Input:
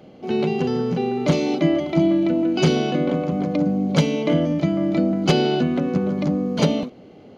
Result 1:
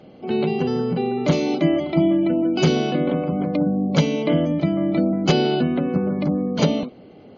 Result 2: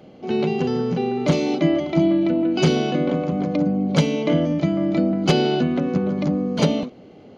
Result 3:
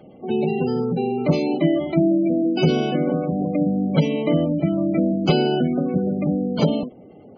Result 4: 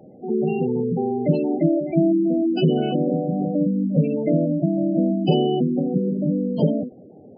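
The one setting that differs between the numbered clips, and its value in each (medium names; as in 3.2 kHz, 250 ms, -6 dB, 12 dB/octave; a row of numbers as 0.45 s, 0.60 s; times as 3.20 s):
spectral gate, under each frame's peak: -40 dB, -60 dB, -25 dB, -15 dB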